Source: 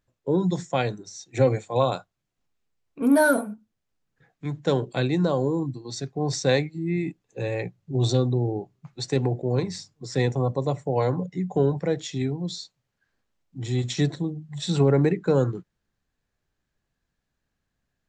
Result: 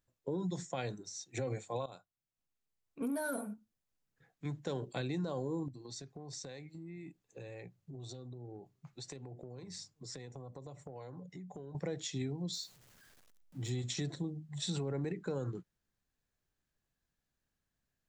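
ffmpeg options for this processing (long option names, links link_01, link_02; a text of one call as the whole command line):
ffmpeg -i in.wav -filter_complex "[0:a]asettb=1/sr,asplit=3[link_01][link_02][link_03];[link_01]atrim=end=5.684[link_04];[link_02]atrim=start=5.68:end=11.75,asetpts=PTS-STARTPTS,afade=type=in:duration=0.004:curve=qsin,afade=type=out:start_time=6.066:duration=0.004:curve=qsin,acompressor=threshold=-36dB:ratio=10:attack=3.2:release=140:knee=1:detection=peak[link_05];[link_03]atrim=start=11.746[link_06];[link_04][link_05]acrossfade=duration=0.004:curve1=hsin:curve2=qsin[link_07];[link_07][link_06]acrossfade=duration=0.004:curve1=qsin:curve2=hsin,asettb=1/sr,asplit=3[link_08][link_09][link_10];[link_08]atrim=end=12.534[link_11];[link_09]atrim=start=12.53:end=13.7,asetpts=PTS-STARTPTS,afade=type=in:duration=0.004:curve=qsin,afade=type=out:start_time=1.166:duration=0.004:curve=qsin,aeval=exprs='val(0)+0.5*0.00282*sgn(val(0))':channel_layout=same[link_12];[link_10]atrim=start=13.696[link_13];[link_11][link_12]acrossfade=duration=0.004:curve1=hsin:curve2=qsin[link_14];[link_14][link_13]acrossfade=duration=0.004:curve1=qsin:curve2=hsin,asplit=2[link_15][link_16];[link_15]atrim=end=1.86,asetpts=PTS-STARTPTS,afade=type=out:start_time=1.856:duration=0.004:curve=hsin:silence=0.125893[link_17];[link_16]atrim=start=1.86,asetpts=PTS-STARTPTS,afade=type=in:duration=1.24:silence=0.125893[link_18];[link_17][link_18]concat=n=2:v=0:a=1,highshelf=frequency=6400:gain=8,alimiter=limit=-17dB:level=0:latency=1:release=53,acompressor=threshold=-25dB:ratio=6,volume=-8dB" out.wav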